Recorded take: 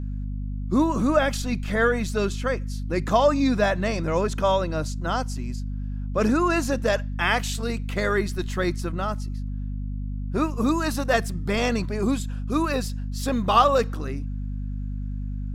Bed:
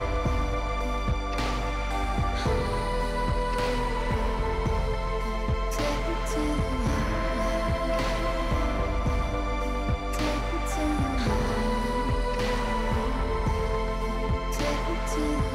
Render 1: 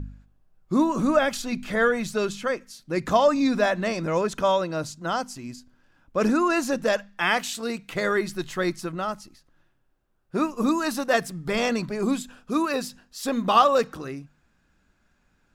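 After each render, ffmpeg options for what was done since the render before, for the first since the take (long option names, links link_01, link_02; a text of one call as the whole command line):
ffmpeg -i in.wav -af "bandreject=frequency=50:width_type=h:width=4,bandreject=frequency=100:width_type=h:width=4,bandreject=frequency=150:width_type=h:width=4,bandreject=frequency=200:width_type=h:width=4,bandreject=frequency=250:width_type=h:width=4" out.wav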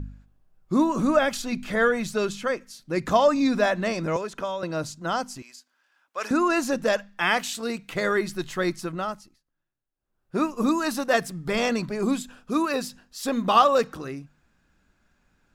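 ffmpeg -i in.wav -filter_complex "[0:a]asettb=1/sr,asplit=3[link_01][link_02][link_03];[link_01]atrim=end=4.164[link_04];[link_02]atrim=start=4.16:end=4.63,asetpts=PTS-STARTPTS,afade=type=in:duration=0.004:curve=qsin,afade=type=out:start_time=0.466:duration=0.004:curve=qsin,acrossover=split=300|2700[link_05][link_06][link_07];[link_05]acompressor=threshold=-44dB:ratio=4[link_08];[link_06]acompressor=threshold=-29dB:ratio=4[link_09];[link_07]acompressor=threshold=-46dB:ratio=4[link_10];[link_08][link_09][link_10]amix=inputs=3:normalize=0[link_11];[link_03]atrim=start=4.626[link_12];[link_04][link_11]acrossfade=duration=0.004:curve1=hsin:curve2=qsin[link_13];[link_13][link_12]acrossfade=duration=0.004:curve1=qsin:curve2=hsin,asettb=1/sr,asplit=3[link_14][link_15][link_16];[link_14]atrim=end=5.424[link_17];[link_15]atrim=start=5.42:end=6.31,asetpts=PTS-STARTPTS,afade=type=in:duration=0.004:curve=qsin,afade=type=out:start_time=0.886:duration=0.004:curve=qsin,highpass=1000[link_18];[link_16]atrim=start=6.306[link_19];[link_17][link_18]acrossfade=duration=0.004:curve1=hsin:curve2=qsin[link_20];[link_20][link_19]acrossfade=duration=0.004:curve1=qsin:curve2=hsin,asplit=3[link_21][link_22][link_23];[link_21]atrim=end=9.43,asetpts=PTS-STARTPTS,afade=type=out:start_time=9.01:duration=0.42:silence=0.105925[link_24];[link_22]atrim=start=9.43:end=9.95,asetpts=PTS-STARTPTS,volume=-19.5dB[link_25];[link_23]atrim=start=9.95,asetpts=PTS-STARTPTS,afade=type=in:duration=0.42:silence=0.105925[link_26];[link_24][link_25][link_26]concat=n=3:v=0:a=1" out.wav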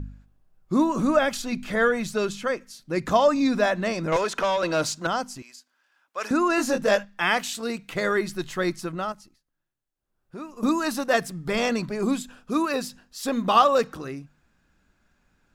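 ffmpeg -i in.wav -filter_complex "[0:a]asettb=1/sr,asplit=3[link_01][link_02][link_03];[link_01]atrim=end=4.124[link_04];[link_02]atrim=start=4.12:end=5.07,asetpts=PTS-STARTPTS,afade=type=in:duration=0.004:curve=qsin,afade=type=out:start_time=0.946:duration=0.004:curve=qsin,asplit=2[link_05][link_06];[link_06]highpass=frequency=720:poles=1,volume=18dB,asoftclip=type=tanh:threshold=-14dB[link_07];[link_05][link_07]amix=inputs=2:normalize=0,lowpass=frequency=7200:poles=1,volume=-6dB[link_08];[link_03]atrim=start=5.066[link_09];[link_04][link_08]acrossfade=duration=0.004:curve1=hsin:curve2=qsin[link_10];[link_10][link_09]acrossfade=duration=0.004:curve1=qsin:curve2=hsin,asettb=1/sr,asplit=3[link_11][link_12][link_13];[link_11]atrim=end=6.564[link_14];[link_12]atrim=start=6.56:end=7.05,asetpts=PTS-STARTPTS,afade=type=in:duration=0.004:curve=qsin,afade=type=out:start_time=0.486:duration=0.004:curve=qsin,asplit=2[link_15][link_16];[link_16]adelay=20,volume=-3dB[link_17];[link_15][link_17]amix=inputs=2:normalize=0,atrim=end_sample=21609[link_18];[link_13]atrim=start=7.046[link_19];[link_14][link_18]acrossfade=duration=0.004:curve1=hsin:curve2=qsin[link_20];[link_20][link_19]acrossfade=duration=0.004:curve1=qsin:curve2=hsin,asettb=1/sr,asplit=3[link_21][link_22][link_23];[link_21]atrim=end=9.124[link_24];[link_22]atrim=start=9.12:end=10.63,asetpts=PTS-STARTPTS,afade=type=in:duration=0.004:curve=qsin,afade=type=out:start_time=1.506:duration=0.004:curve=qsin,acompressor=threshold=-44dB:ratio=2:attack=3.2:release=140:knee=1:detection=peak[link_25];[link_23]atrim=start=10.626[link_26];[link_24][link_25]acrossfade=duration=0.004:curve1=hsin:curve2=qsin[link_27];[link_27][link_26]acrossfade=duration=0.004:curve1=qsin:curve2=hsin" out.wav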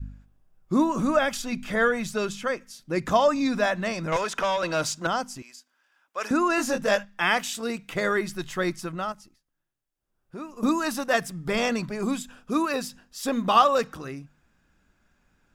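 ffmpeg -i in.wav -af "adynamicequalizer=threshold=0.0158:dfrequency=370:dqfactor=0.98:tfrequency=370:tqfactor=0.98:attack=5:release=100:ratio=0.375:range=3:mode=cutabove:tftype=bell,bandreject=frequency=4200:width=12" out.wav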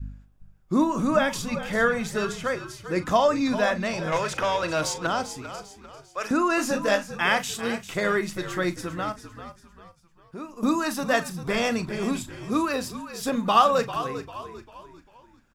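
ffmpeg -i in.wav -filter_complex "[0:a]asplit=2[link_01][link_02];[link_02]adelay=39,volume=-13dB[link_03];[link_01][link_03]amix=inputs=2:normalize=0,asplit=2[link_04][link_05];[link_05]asplit=4[link_06][link_07][link_08][link_09];[link_06]adelay=396,afreqshift=-56,volume=-12dB[link_10];[link_07]adelay=792,afreqshift=-112,volume=-20dB[link_11];[link_08]adelay=1188,afreqshift=-168,volume=-27.9dB[link_12];[link_09]adelay=1584,afreqshift=-224,volume=-35.9dB[link_13];[link_10][link_11][link_12][link_13]amix=inputs=4:normalize=0[link_14];[link_04][link_14]amix=inputs=2:normalize=0" out.wav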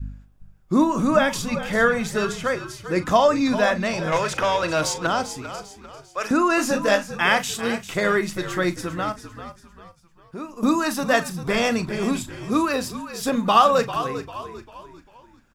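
ffmpeg -i in.wav -af "volume=3.5dB,alimiter=limit=-3dB:level=0:latency=1" out.wav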